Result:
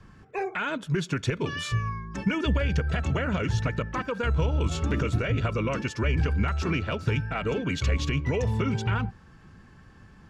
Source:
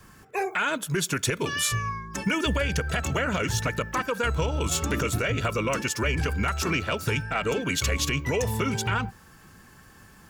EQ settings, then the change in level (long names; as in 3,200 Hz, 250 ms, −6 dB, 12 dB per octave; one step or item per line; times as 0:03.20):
low-pass filter 4,400 Hz 12 dB per octave
low-shelf EQ 310 Hz +8.5 dB
−4.5 dB